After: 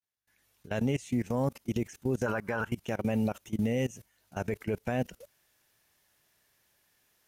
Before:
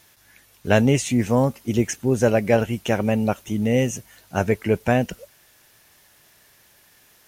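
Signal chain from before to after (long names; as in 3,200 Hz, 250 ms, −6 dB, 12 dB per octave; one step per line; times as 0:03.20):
fade in at the beginning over 1.43 s
0:02.26–0:02.72: flat-topped bell 1,200 Hz +15 dB 1.1 octaves
output level in coarse steps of 23 dB
brickwall limiter −18.5 dBFS, peak gain reduction 8 dB
level −2 dB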